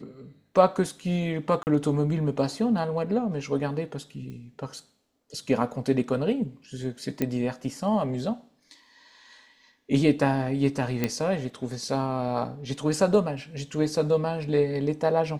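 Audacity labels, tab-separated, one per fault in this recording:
1.630000	1.670000	drop-out 39 ms
4.300000	4.300000	click −30 dBFS
7.220000	7.220000	click −13 dBFS
11.040000	11.040000	click −11 dBFS

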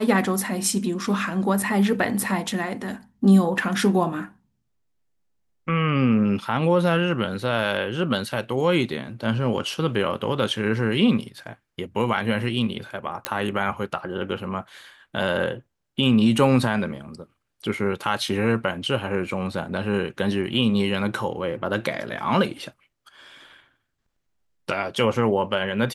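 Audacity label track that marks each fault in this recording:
13.250000	13.250000	click −6 dBFS

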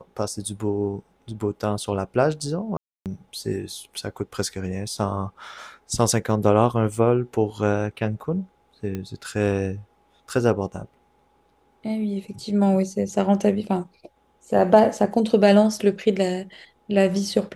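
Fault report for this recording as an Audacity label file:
2.770000	3.060000	drop-out 288 ms
8.950000	8.950000	click −18 dBFS

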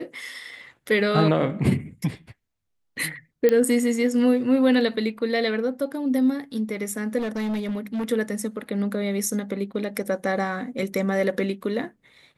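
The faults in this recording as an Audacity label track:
3.490000	3.490000	click −9 dBFS
7.180000	8.050000	clipping −23.5 dBFS

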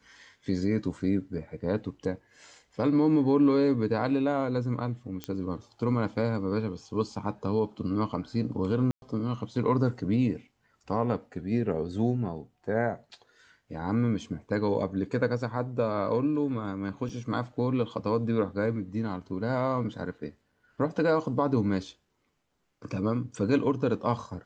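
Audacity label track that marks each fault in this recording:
5.240000	5.240000	click −19 dBFS
8.910000	9.020000	drop-out 111 ms
17.090000	17.090000	drop-out 4.1 ms

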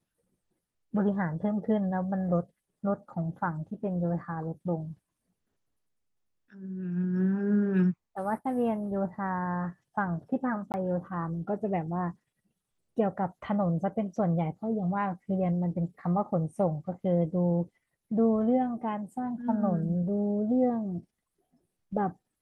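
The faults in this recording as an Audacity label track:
10.720000	10.740000	drop-out 19 ms

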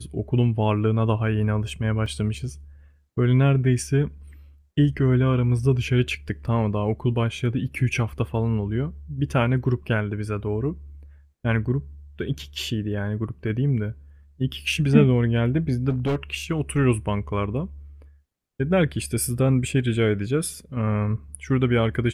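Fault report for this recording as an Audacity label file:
2.060000	2.060000	drop-out 3.1 ms
15.890000	16.230000	clipping −19.5 dBFS

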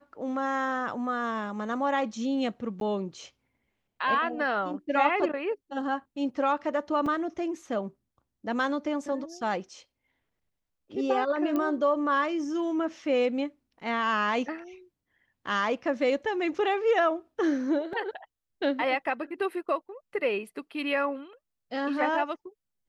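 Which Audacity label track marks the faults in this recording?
2.800000	2.810000	drop-out 12 ms
7.060000	7.060000	drop-out 3.9 ms
11.560000	11.560000	click −18 dBFS
17.930000	17.930000	drop-out 2.6 ms

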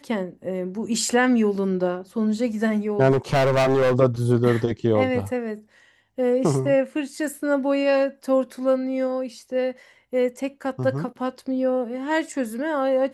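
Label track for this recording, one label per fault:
3.110000	3.950000	clipping −16 dBFS

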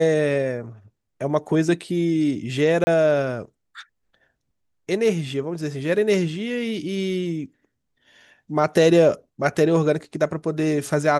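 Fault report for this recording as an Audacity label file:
2.840000	2.870000	drop-out 30 ms

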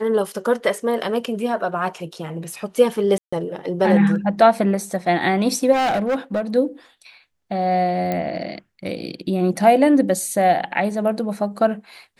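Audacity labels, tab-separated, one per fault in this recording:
3.180000	3.330000	drop-out 145 ms
5.720000	6.410000	clipping −17 dBFS
8.120000	8.120000	click −11 dBFS

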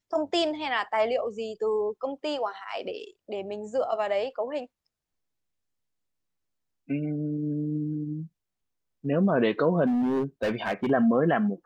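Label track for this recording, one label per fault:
9.860000	10.910000	clipping −22 dBFS

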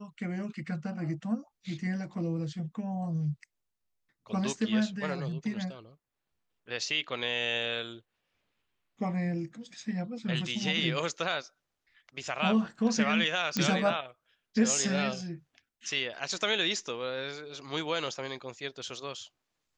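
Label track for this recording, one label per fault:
13.570000	13.570000	click −13 dBFS

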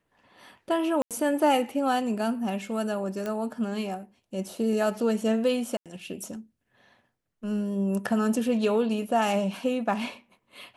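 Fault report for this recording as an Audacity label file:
1.020000	1.110000	drop-out 87 ms
3.260000	3.260000	click −19 dBFS
5.770000	5.860000	drop-out 87 ms

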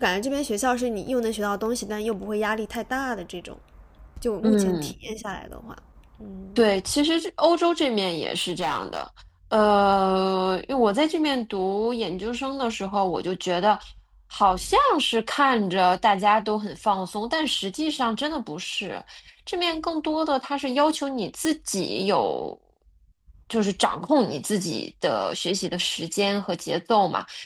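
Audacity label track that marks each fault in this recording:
8.360000	9.020000	clipping −21 dBFS
21.450000	21.450000	click −12 dBFS

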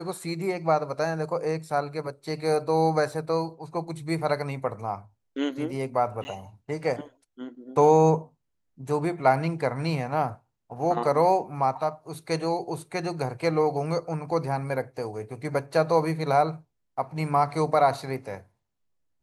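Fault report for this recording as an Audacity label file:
3.120000	3.120000	drop-out 2.6 ms
6.240000	6.250000	drop-out 10 ms

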